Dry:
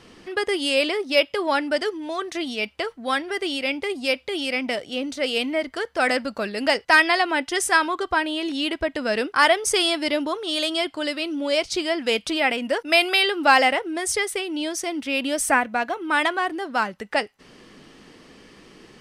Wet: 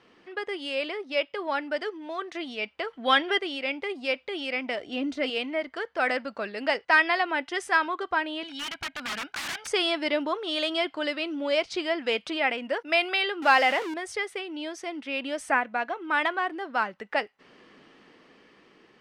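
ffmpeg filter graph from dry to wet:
-filter_complex "[0:a]asettb=1/sr,asplit=3[s0][s1][s2];[s0]atrim=end=2.934[s3];[s1]atrim=start=2.93:end=3.39,asetpts=PTS-STARTPTS,afade=t=in:d=0.004:c=qsin,afade=t=out:st=0.456:d=0.004:c=qsin,equalizer=f=3200:w=5.8:g=12,acontrast=56[s4];[s2]atrim=start=3.386[s5];[s3][s4]acrossfade=d=0.004:c1=hsin:c2=qsin[s6];[s6][s5]acrossfade=d=0.004:c1=qsin:c2=hsin,asettb=1/sr,asplit=3[s7][s8][s9];[s7]atrim=end=4.804[s10];[s8]atrim=start=4.8:end=5.3,asetpts=PTS-STARTPTS,afade=t=in:d=0.004:c=qsin,afade=t=out:st=0.496:d=0.004:c=qsin,lowshelf=f=350:g=9.5,aecho=1:1:2.9:0.45,atrim=end_sample=22050[s11];[s9]atrim=start=5.296[s12];[s10][s11]acrossfade=d=0.004:c1=hsin:c2=qsin[s13];[s13][s12]acrossfade=d=0.004:c1=qsin:c2=hsin,asettb=1/sr,asplit=3[s14][s15][s16];[s14]atrim=end=8.434[s17];[s15]atrim=start=8.43:end=9.67,asetpts=PTS-STARTPTS,afade=t=in:d=0.004:c=qsin,afade=t=out:st=1.236:d=0.004:c=qsin,aecho=1:1:1.3:0.8,atrim=end_sample=54684,aeval=exprs='(mod(8.41*val(0)+1,2)-1)/8.41':c=same,equalizer=f=500:t=o:w=1.2:g=-11.5[s18];[s16]atrim=start=9.666[s19];[s17][s18]acrossfade=d=0.004:c1=hsin:c2=qsin[s20];[s20][s19]acrossfade=d=0.004:c1=qsin:c2=hsin,asettb=1/sr,asplit=3[s21][s22][s23];[s21]atrim=end=13.424[s24];[s22]atrim=start=13.42:end=13.94,asetpts=PTS-STARTPTS,afade=t=in:d=0.004:c=qsin,afade=t=out:st=0.516:d=0.004:c=qsin,aeval=exprs='val(0)+0.5*0.075*sgn(val(0))':c=same,highpass=f=200:p=1,highshelf=f=4900:g=6[s25];[s23]atrim=start=13.936[s26];[s24][s25]acrossfade=d=0.004:c1=hsin:c2=qsin[s27];[s27][s26]acrossfade=d=0.004:c1=qsin:c2=hsin,lowpass=2400,aemphasis=mode=production:type=bsi,dynaudnorm=f=740:g=5:m=3.76,volume=0.422"

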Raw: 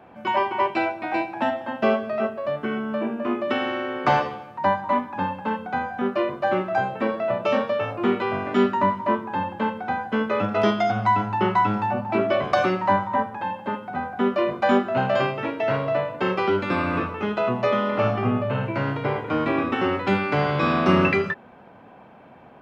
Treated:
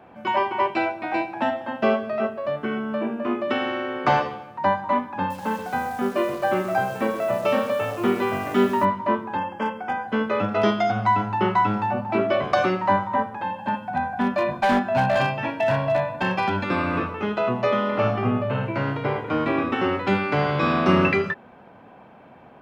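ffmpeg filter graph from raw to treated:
-filter_complex "[0:a]asettb=1/sr,asplit=3[s0][s1][s2];[s0]atrim=end=5.304[s3];[s1]atrim=start=5.3:end=8.85,asetpts=PTS-STARTPTS,afade=t=in:d=0.004:c=qsin,afade=t=out:st=3.546:d=0.004:c=qsin,acrusher=bits=8:dc=4:mix=0:aa=0.000001,aecho=1:1:129:0.299,atrim=end_sample=156555[s4];[s2]atrim=start=8.846[s5];[s3][s4]acrossfade=d=0.004:c1=hsin:c2=qsin[s6];[s6][s5]acrossfade=d=0.004:c1=qsin:c2=hsin,asettb=1/sr,asplit=3[s7][s8][s9];[s7]atrim=end=9.374[s10];[s8]atrim=start=9.37:end=10.08,asetpts=PTS-STARTPTS,afade=t=in:d=0.004:c=qsin,afade=t=out:st=0.706:d=0.004:c=qsin,equalizer=f=96:t=o:w=2.4:g=-7,asoftclip=type=hard:threshold=0.126,asuperstop=centerf=4000:order=20:qfactor=3.9[s11];[s9]atrim=start=10.076[s12];[s10][s11]acrossfade=d=0.004:c1=hsin:c2=qsin[s13];[s13][s12]acrossfade=d=0.004:c1=qsin:c2=hsin,asettb=1/sr,asplit=3[s14][s15][s16];[s14]atrim=end=13.584[s17];[s15]atrim=start=13.58:end=16.64,asetpts=PTS-STARTPTS,afade=t=in:d=0.004:c=qsin,afade=t=out:st=3.056:d=0.004:c=qsin,aecho=1:1:1.2:0.74,atrim=end_sample=134946,asoftclip=type=hard:threshold=0.178[s18];[s16]atrim=start=16.636[s19];[s17][s18]acrossfade=d=0.004:c1=hsin:c2=qsin[s20];[s20][s19]acrossfade=d=0.004:c1=qsin:c2=hsin"

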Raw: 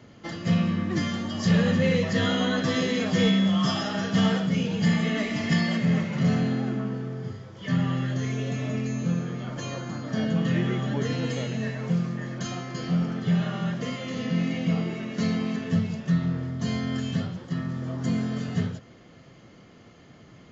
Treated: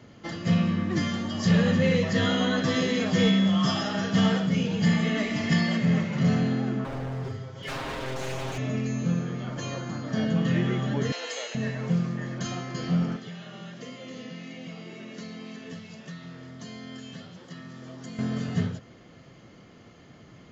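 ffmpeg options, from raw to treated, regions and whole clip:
-filter_complex "[0:a]asettb=1/sr,asplit=3[s0][s1][s2];[s0]atrim=end=6.844[s3];[s1]atrim=start=6.84:end=8.58,asetpts=PTS-STARTPTS,afade=t=in:d=0.004:c=qsin,afade=t=out:st=1.736:d=0.004:c=qsin,aeval=exprs='0.0282*(abs(mod(val(0)/0.0282+3,4)-2)-1)':c=same,aecho=1:1:7.5:0.89,atrim=end_sample=76734[s4];[s2]atrim=start=8.576[s5];[s3][s4]acrossfade=d=0.004:c1=hsin:c2=qsin[s6];[s6][s5]acrossfade=d=0.004:c1=qsin:c2=hsin,asettb=1/sr,asplit=3[s7][s8][s9];[s7]atrim=end=11.124[s10];[s8]atrim=start=11.12:end=11.55,asetpts=PTS-STARTPTS,afade=t=in:d=0.004:c=qsin,afade=t=out:st=0.426:d=0.004:c=qsin,highpass=f=520:w=0.5412,highpass=f=520:w=1.3066,highshelf=f=3900:g=7[s11];[s9]atrim=start=11.546[s12];[s10][s11]acrossfade=d=0.004:c1=hsin:c2=qsin[s13];[s13][s12]acrossfade=d=0.004:c1=qsin:c2=hsin,asettb=1/sr,asplit=3[s14][s15][s16];[s14]atrim=end=13.164[s17];[s15]atrim=start=13.16:end=18.19,asetpts=PTS-STARTPTS,afade=t=in:d=0.004:c=qsin,afade=t=out:st=5.026:d=0.004:c=qsin,acrossover=split=620|2100[s18][s19][s20];[s18]acompressor=threshold=0.0251:ratio=4[s21];[s19]acompressor=threshold=0.002:ratio=4[s22];[s20]acompressor=threshold=0.00355:ratio=4[s23];[s21][s22][s23]amix=inputs=3:normalize=0,highpass=f=430:p=1[s24];[s16]atrim=start=18.186[s25];[s17][s24]acrossfade=d=0.004:c1=hsin:c2=qsin[s26];[s26][s25]acrossfade=d=0.004:c1=qsin:c2=hsin"

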